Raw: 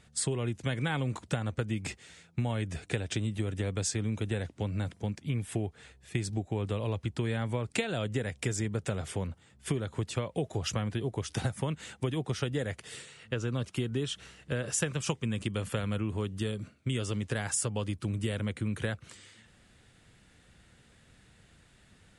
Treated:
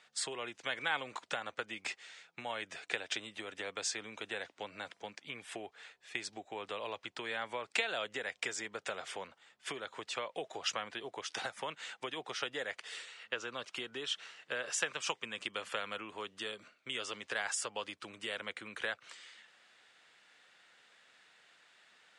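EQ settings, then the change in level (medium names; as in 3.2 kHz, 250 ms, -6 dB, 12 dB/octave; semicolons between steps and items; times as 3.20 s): band-pass 770–5400 Hz; +2.0 dB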